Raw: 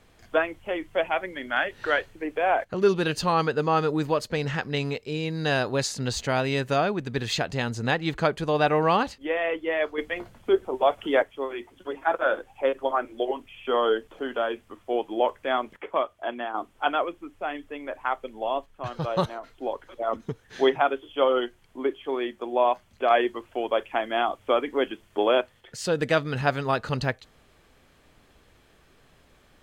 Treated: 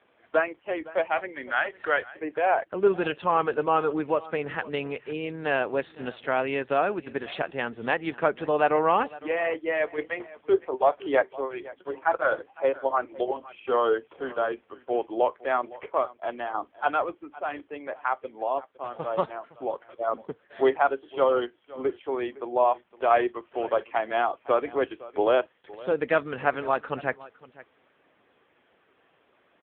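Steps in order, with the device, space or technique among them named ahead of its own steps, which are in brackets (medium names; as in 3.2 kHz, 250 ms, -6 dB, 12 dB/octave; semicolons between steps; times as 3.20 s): 5.58–7.73 s: high-pass 89 Hz 6 dB/octave; satellite phone (band-pass 300–3000 Hz; delay 511 ms -19.5 dB; trim +1 dB; AMR-NB 6.7 kbps 8 kHz)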